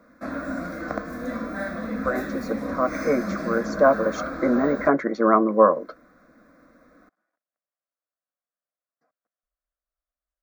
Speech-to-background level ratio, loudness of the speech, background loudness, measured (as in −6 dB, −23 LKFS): 8.5 dB, −22.5 LKFS, −31.0 LKFS